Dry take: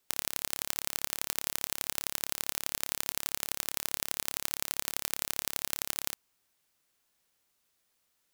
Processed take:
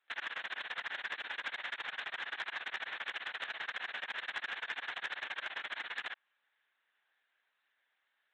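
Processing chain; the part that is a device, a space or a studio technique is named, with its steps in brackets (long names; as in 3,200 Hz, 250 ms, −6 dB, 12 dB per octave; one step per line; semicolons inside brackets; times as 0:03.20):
talking toy (linear-prediction vocoder at 8 kHz; high-pass filter 550 Hz 12 dB per octave; parametric band 1,700 Hz +11.5 dB 0.51 octaves; soft clipping −27.5 dBFS, distortion −21 dB)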